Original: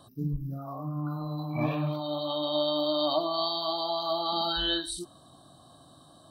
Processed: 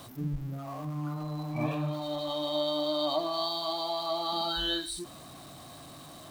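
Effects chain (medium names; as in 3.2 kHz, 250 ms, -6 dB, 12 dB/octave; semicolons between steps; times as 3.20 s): jump at every zero crossing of -41.5 dBFS; trim -3 dB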